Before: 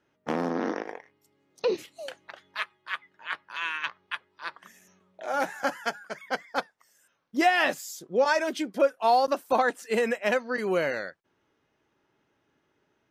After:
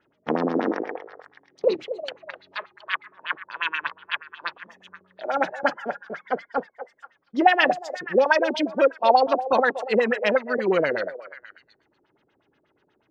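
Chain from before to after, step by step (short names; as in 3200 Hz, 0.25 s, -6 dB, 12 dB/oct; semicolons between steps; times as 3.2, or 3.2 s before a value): LFO low-pass sine 8.3 Hz 330–4500 Hz; delay with a stepping band-pass 0.24 s, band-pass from 590 Hz, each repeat 1.4 oct, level -10 dB; gain +2.5 dB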